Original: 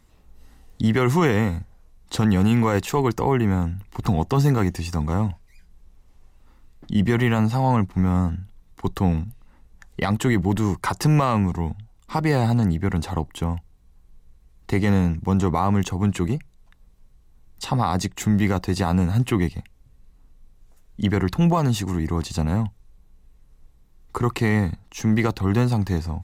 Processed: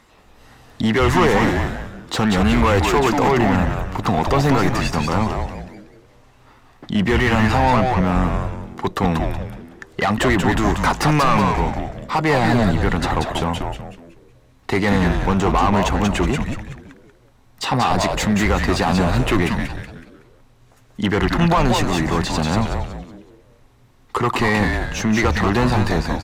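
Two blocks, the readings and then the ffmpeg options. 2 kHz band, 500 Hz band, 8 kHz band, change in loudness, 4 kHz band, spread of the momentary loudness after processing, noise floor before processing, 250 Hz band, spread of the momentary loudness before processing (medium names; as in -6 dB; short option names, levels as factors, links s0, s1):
+9.5 dB, +6.0 dB, +5.5 dB, +3.5 dB, +9.0 dB, 12 LU, -54 dBFS, +2.5 dB, 9 LU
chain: -filter_complex "[0:a]asplit=2[s0][s1];[s1]highpass=f=720:p=1,volume=11.2,asoftclip=type=tanh:threshold=0.376[s2];[s0][s2]amix=inputs=2:normalize=0,lowpass=f=2500:p=1,volume=0.501,asplit=6[s3][s4][s5][s6][s7][s8];[s4]adelay=186,afreqshift=-140,volume=0.668[s9];[s5]adelay=372,afreqshift=-280,volume=0.248[s10];[s6]adelay=558,afreqshift=-420,volume=0.0912[s11];[s7]adelay=744,afreqshift=-560,volume=0.0339[s12];[s8]adelay=930,afreqshift=-700,volume=0.0126[s13];[s3][s9][s10][s11][s12][s13]amix=inputs=6:normalize=0"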